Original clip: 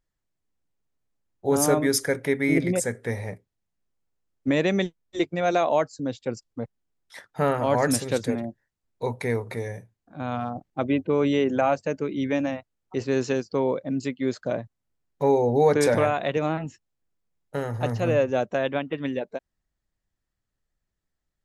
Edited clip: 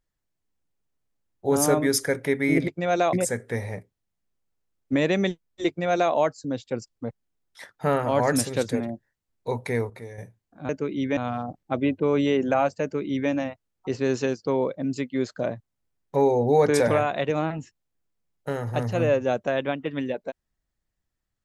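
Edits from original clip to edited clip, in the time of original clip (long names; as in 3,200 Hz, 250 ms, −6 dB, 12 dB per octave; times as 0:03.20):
0:05.23–0:05.68: duplicate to 0:02.68
0:09.45–0:09.73: clip gain −8.5 dB
0:11.89–0:12.37: duplicate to 0:10.24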